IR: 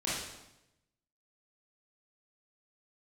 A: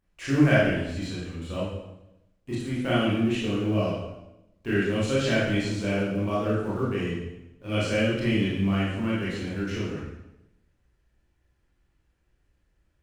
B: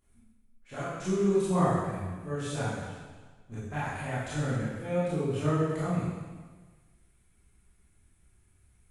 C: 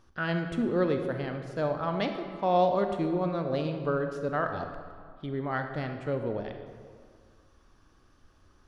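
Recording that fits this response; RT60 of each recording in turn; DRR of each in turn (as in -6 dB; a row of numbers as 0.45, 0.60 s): A; 0.90, 1.4, 1.9 s; -9.0, -11.5, 5.5 dB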